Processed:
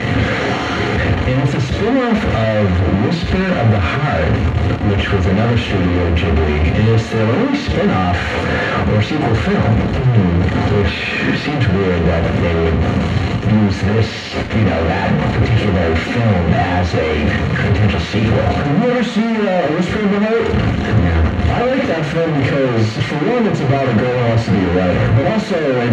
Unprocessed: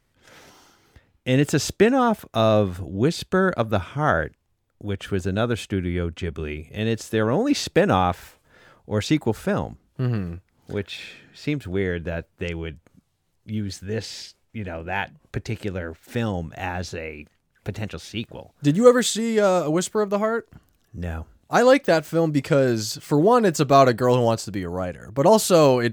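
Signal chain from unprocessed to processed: infinite clipping; LPF 4100 Hz 12 dB/oct; low shelf 380 Hz +7 dB; reverb RT60 0.60 s, pre-delay 3 ms, DRR 1 dB; gain -7.5 dB

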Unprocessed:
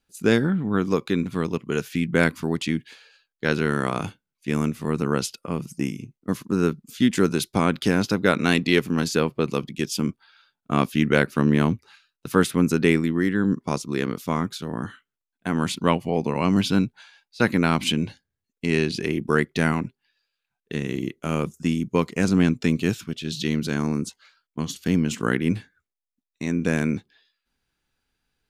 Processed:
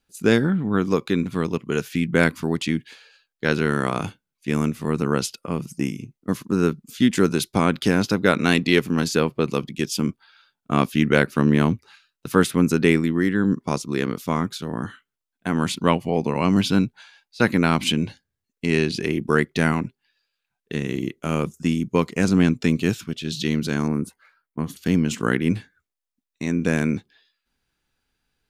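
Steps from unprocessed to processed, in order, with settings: 23.88–24.77 band shelf 4600 Hz -14 dB; gain +1.5 dB

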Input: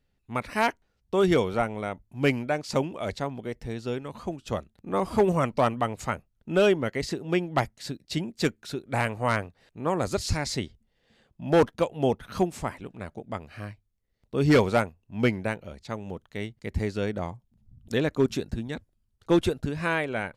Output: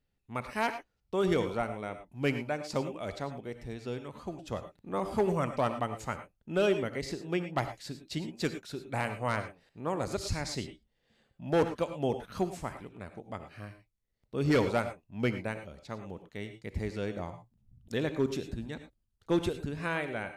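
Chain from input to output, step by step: non-linear reverb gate 0.13 s rising, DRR 9 dB; gain -6.5 dB

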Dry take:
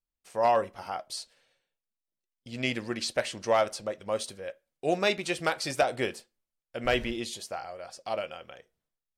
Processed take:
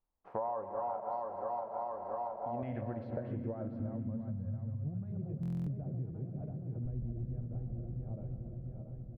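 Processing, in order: regenerating reverse delay 0.34 s, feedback 77%, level -7.5 dB; 2.62–5.12 fifteen-band EQ 100 Hz +12 dB, 400 Hz -11 dB, 1600 Hz +11 dB, 4000 Hz +7 dB; limiter -19 dBFS, peak gain reduction 10.5 dB; multi-head echo 0.117 s, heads all three, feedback 68%, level -19 dB; low-pass sweep 950 Hz -> 130 Hz, 2.31–4.85; compressor 6:1, threshold -40 dBFS, peak gain reduction 20 dB; high shelf 2900 Hz -12 dB; echo 0.129 s -16.5 dB; stuck buffer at 5.41, samples 1024, times 10; gain +5 dB

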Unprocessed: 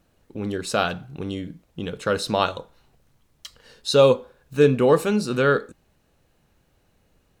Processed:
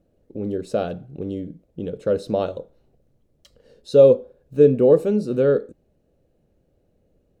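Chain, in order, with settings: EQ curve 130 Hz 0 dB, 570 Hz +5 dB, 960 Hz -13 dB; gain -1 dB

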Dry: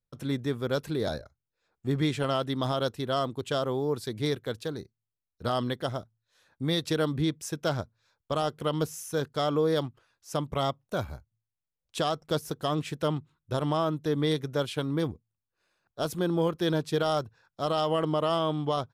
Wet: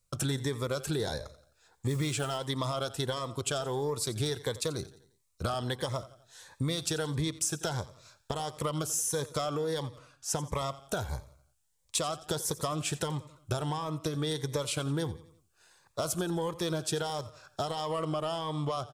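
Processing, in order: 1.88–2.38 modulation noise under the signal 29 dB; ten-band EQ 250 Hz -8 dB, 1000 Hz +5 dB, 8000 Hz +11 dB; in parallel at +1 dB: limiter -21.5 dBFS, peak gain reduction 8 dB; 9.86–10.47 on the sum: high shelf 3600 Hz -7 dB; soft clip -12.5 dBFS, distortion -22 dB; compressor 12:1, threshold -32 dBFS, peak gain reduction 13.5 dB; on a send: feedback echo 87 ms, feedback 46%, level -17 dB; on the sum: cascading phaser rising 1.5 Hz; gain +4.5 dB

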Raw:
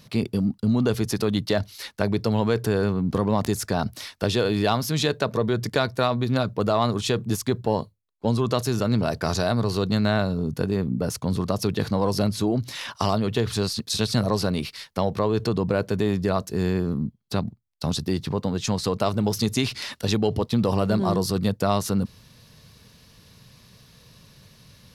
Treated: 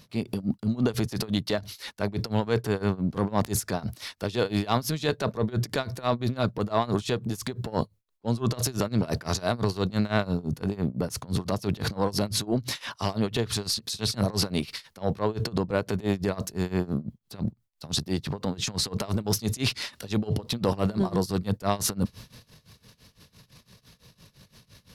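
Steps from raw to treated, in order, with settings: transient shaper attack -7 dB, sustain +8 dB; tremolo 5.9 Hz, depth 91%

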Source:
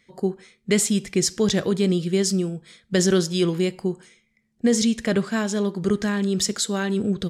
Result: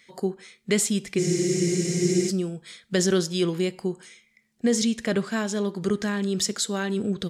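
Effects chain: low shelf 99 Hz -8 dB; spectral freeze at 1.21, 1.08 s; mismatched tape noise reduction encoder only; gain -2 dB

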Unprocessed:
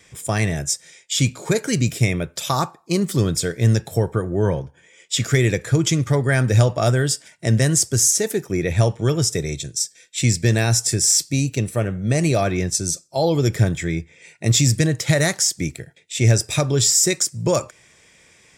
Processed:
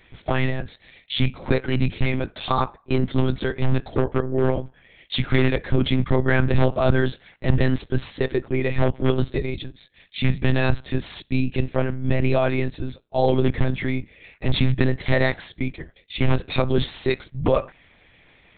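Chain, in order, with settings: wavefolder -10 dBFS; monotone LPC vocoder at 8 kHz 130 Hz

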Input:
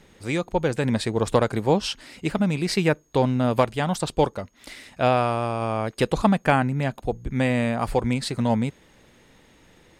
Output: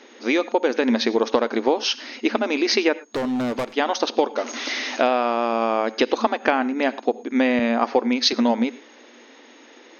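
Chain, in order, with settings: 4.36–5.02 zero-crossing step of -33 dBFS; FFT band-pass 220–6600 Hz; compressor, threshold -24 dBFS, peak gain reduction 10.5 dB; 3.03–3.73 overloaded stage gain 29.5 dB; on a send at -17.5 dB: reverb, pre-delay 3 ms; 7.59–8.33 on the sum: three-band expander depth 70%; gain +8.5 dB

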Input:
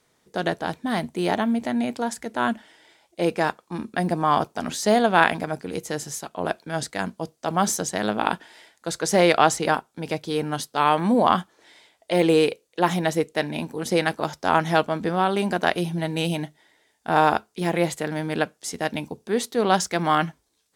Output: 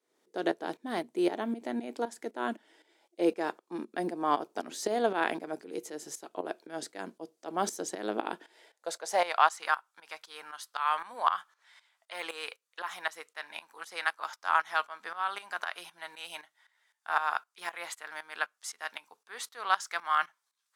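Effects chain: tremolo saw up 3.9 Hz, depth 80%; high-pass sweep 340 Hz -> 1200 Hz, 8.44–9.56; gain -7 dB

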